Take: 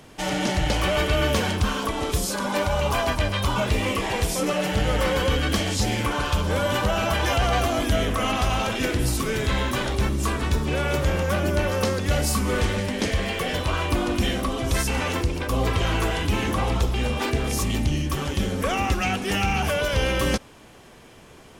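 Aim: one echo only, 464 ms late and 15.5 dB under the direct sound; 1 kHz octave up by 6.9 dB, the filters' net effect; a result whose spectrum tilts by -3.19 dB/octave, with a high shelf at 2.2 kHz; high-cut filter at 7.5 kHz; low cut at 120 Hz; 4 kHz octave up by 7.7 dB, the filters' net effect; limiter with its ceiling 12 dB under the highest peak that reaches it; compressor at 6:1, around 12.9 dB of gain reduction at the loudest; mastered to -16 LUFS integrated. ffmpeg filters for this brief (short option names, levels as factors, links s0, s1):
-af "highpass=120,lowpass=7500,equalizer=f=1000:t=o:g=7.5,highshelf=f=2200:g=5,equalizer=f=4000:t=o:g=5.5,acompressor=threshold=0.0316:ratio=6,alimiter=level_in=1.33:limit=0.0631:level=0:latency=1,volume=0.75,aecho=1:1:464:0.168,volume=8.91"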